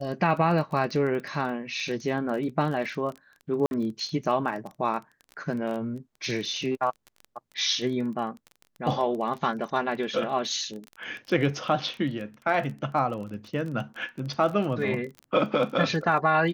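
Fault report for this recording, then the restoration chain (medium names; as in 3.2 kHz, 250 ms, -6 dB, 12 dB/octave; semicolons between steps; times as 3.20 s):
crackle 22 per s -33 dBFS
3.66–3.71 s: dropout 51 ms
15.19 s: pop -27 dBFS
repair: de-click; interpolate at 3.66 s, 51 ms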